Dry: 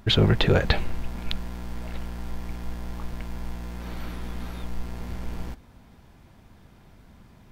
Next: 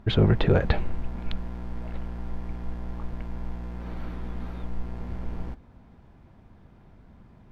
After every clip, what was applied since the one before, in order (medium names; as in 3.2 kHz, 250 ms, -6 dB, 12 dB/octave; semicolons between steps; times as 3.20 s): low-pass 1.2 kHz 6 dB/octave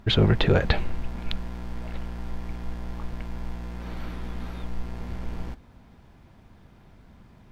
treble shelf 2.2 kHz +10 dB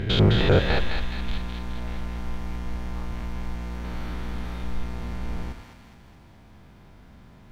spectrogram pixelated in time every 100 ms; thinning echo 210 ms, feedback 59%, high-pass 1.1 kHz, level -4 dB; trim +3.5 dB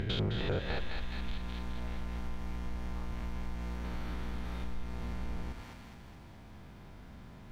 compression 2.5:1, threshold -35 dBFS, peak gain reduction 14.5 dB; trim -1 dB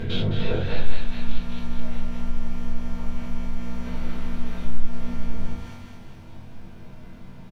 doubling 21 ms -7 dB; reverberation RT60 0.35 s, pre-delay 4 ms, DRR -7 dB; trim -3 dB